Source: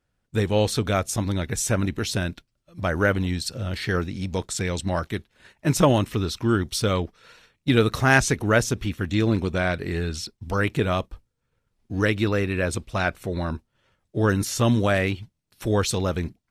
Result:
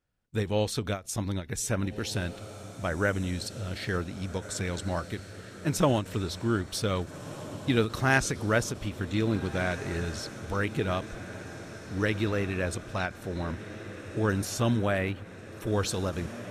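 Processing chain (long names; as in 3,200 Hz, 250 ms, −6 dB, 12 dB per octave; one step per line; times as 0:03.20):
feedback delay with all-pass diffusion 1,638 ms, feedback 64%, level −13.5 dB
0:14.75–0:15.67: dynamic equaliser 5,400 Hz, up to −7 dB, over −48 dBFS, Q 1.1
every ending faded ahead of time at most 240 dB per second
level −6 dB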